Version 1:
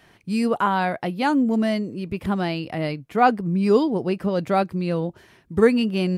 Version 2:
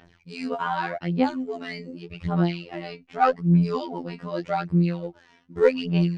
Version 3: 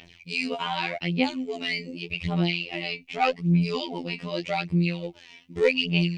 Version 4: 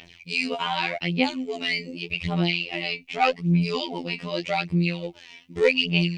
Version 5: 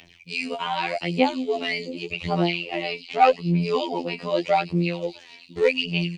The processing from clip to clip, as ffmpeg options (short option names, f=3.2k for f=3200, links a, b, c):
-af "aphaser=in_gain=1:out_gain=1:delay=4.3:decay=0.78:speed=0.84:type=sinusoidal,afftfilt=real='hypot(re,im)*cos(PI*b)':imag='0':win_size=2048:overlap=0.75,lowpass=f=6.6k:w=0.5412,lowpass=f=6.6k:w=1.3066,volume=-5dB"
-filter_complex "[0:a]highshelf=f=1.9k:t=q:w=3:g=8,asplit=2[a][b];[b]acompressor=threshold=-29dB:ratio=6,volume=-1dB[c];[a][c]amix=inputs=2:normalize=0,volume=-4.5dB"
-af "lowshelf=f=480:g=-3,volume=3dB"
-filter_complex "[0:a]acrossover=split=320|1200|3600[a][b][c][d];[b]dynaudnorm=f=200:g=9:m=11.5dB[e];[d]aecho=1:1:93|557|735:0.355|0.501|0.376[f];[a][e][c][f]amix=inputs=4:normalize=0,volume=-3dB"